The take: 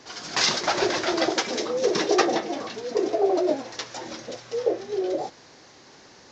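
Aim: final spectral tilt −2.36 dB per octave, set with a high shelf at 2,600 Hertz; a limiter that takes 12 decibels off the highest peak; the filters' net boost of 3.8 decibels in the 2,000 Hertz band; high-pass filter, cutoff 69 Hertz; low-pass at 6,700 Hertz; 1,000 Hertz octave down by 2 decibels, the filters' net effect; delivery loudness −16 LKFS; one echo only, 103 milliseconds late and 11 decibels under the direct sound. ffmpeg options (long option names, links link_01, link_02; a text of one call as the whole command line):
ffmpeg -i in.wav -af "highpass=69,lowpass=6700,equalizer=frequency=1000:width_type=o:gain=-4.5,equalizer=frequency=2000:width_type=o:gain=4.5,highshelf=frequency=2600:gain=3.5,alimiter=limit=-16.5dB:level=0:latency=1,aecho=1:1:103:0.282,volume=11.5dB" out.wav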